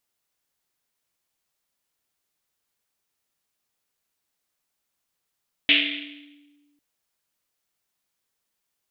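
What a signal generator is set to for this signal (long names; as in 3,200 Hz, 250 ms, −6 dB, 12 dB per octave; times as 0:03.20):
drum after Risset, pitch 290 Hz, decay 1.72 s, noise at 2,800 Hz, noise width 1,500 Hz, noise 75%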